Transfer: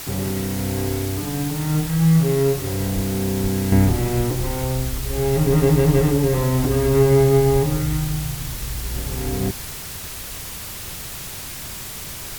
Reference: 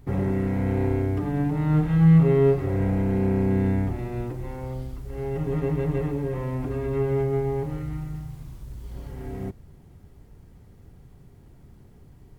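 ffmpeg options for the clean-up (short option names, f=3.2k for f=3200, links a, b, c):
-filter_complex "[0:a]asplit=3[a][b][c];[a]afade=t=out:st=2.94:d=0.02[d];[b]highpass=f=140:w=0.5412,highpass=f=140:w=1.3066,afade=t=in:st=2.94:d=0.02,afade=t=out:st=3.06:d=0.02[e];[c]afade=t=in:st=3.06:d=0.02[f];[d][e][f]amix=inputs=3:normalize=0,asplit=3[g][h][i];[g]afade=t=out:st=3.42:d=0.02[j];[h]highpass=f=140:w=0.5412,highpass=f=140:w=1.3066,afade=t=in:st=3.42:d=0.02,afade=t=out:st=3.54:d=0.02[k];[i]afade=t=in:st=3.54:d=0.02[l];[j][k][l]amix=inputs=3:normalize=0,asplit=3[m][n][o];[m]afade=t=out:st=7.52:d=0.02[p];[n]highpass=f=140:w=0.5412,highpass=f=140:w=1.3066,afade=t=in:st=7.52:d=0.02,afade=t=out:st=7.64:d=0.02[q];[o]afade=t=in:st=7.64:d=0.02[r];[p][q][r]amix=inputs=3:normalize=0,afwtdn=0.022,asetnsamples=n=441:p=0,asendcmd='3.72 volume volume -9.5dB',volume=0dB"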